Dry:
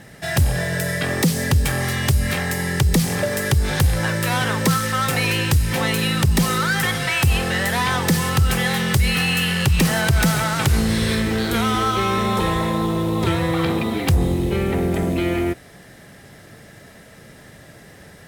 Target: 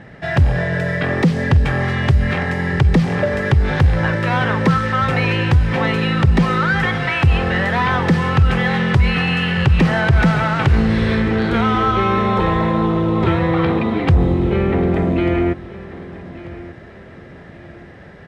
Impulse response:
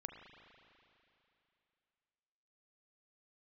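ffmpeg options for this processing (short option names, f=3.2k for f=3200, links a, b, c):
-af "lowpass=2.3k,aecho=1:1:1190|2380|3570:0.133|0.0453|0.0154,volume=4dB"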